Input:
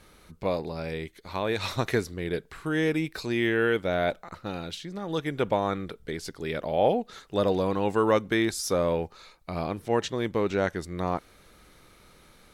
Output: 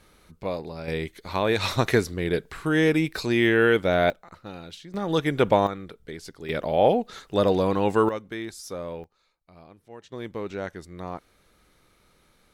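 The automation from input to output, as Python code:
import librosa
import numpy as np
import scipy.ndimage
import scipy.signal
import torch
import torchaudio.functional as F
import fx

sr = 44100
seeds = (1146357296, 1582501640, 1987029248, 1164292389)

y = fx.gain(x, sr, db=fx.steps((0.0, -2.0), (0.88, 5.0), (4.1, -5.0), (4.94, 6.0), (5.67, -4.0), (6.49, 3.5), (8.09, -9.0), (9.04, -19.0), (10.12, -6.5)))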